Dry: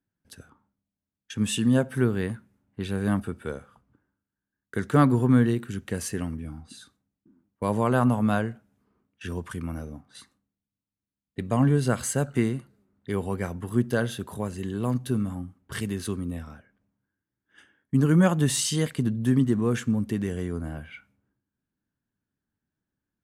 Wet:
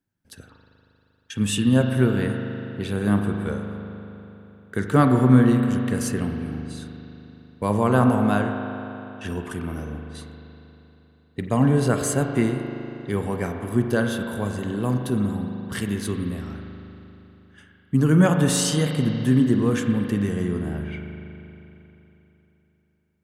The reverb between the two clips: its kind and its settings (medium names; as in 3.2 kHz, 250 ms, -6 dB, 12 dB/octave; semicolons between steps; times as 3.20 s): spring tank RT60 3.3 s, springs 39 ms, chirp 20 ms, DRR 4 dB; trim +2.5 dB